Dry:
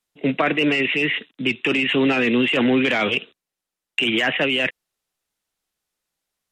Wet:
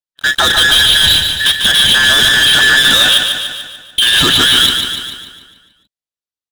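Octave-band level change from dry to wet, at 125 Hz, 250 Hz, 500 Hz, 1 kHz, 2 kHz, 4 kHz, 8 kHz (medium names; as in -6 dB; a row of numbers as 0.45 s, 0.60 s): +6.5 dB, -5.5 dB, -3.5 dB, +8.0 dB, +11.0 dB, +19.5 dB, no reading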